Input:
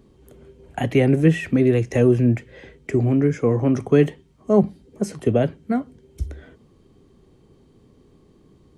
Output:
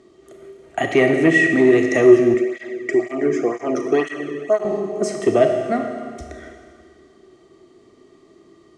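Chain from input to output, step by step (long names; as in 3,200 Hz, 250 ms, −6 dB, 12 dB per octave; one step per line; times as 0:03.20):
four-comb reverb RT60 2 s, combs from 27 ms, DRR 4 dB
soft clipping −7 dBFS, distortion −19 dB
low-pass filter 8,000 Hz 24 dB per octave
spectral tilt +3 dB per octave
hollow resonant body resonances 360/650/1,200/1,900 Hz, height 16 dB, ringing for 45 ms
0:02.34–0:04.65: through-zero flanger with one copy inverted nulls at 2 Hz, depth 1.5 ms
level −1 dB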